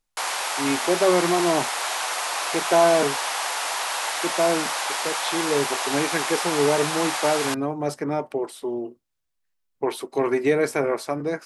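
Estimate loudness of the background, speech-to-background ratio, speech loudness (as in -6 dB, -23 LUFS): -25.5 LUFS, 1.0 dB, -24.5 LUFS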